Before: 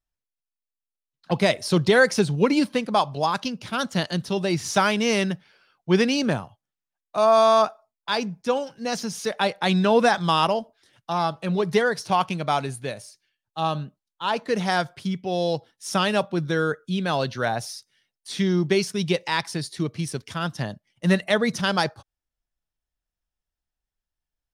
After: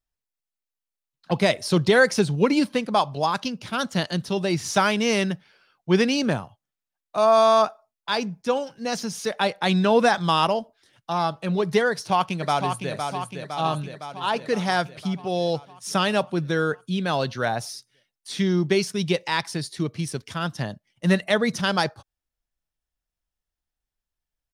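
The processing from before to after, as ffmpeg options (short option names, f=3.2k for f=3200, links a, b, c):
-filter_complex "[0:a]asplit=2[a][b];[b]afade=t=in:st=11.91:d=0.01,afade=t=out:st=12.93:d=0.01,aecho=0:1:510|1020|1530|2040|2550|3060|3570|4080|4590|5100:0.501187|0.325772|0.211752|0.137639|0.0894651|0.0581523|0.037799|0.0245693|0.0159701|0.0103805[c];[a][c]amix=inputs=2:normalize=0"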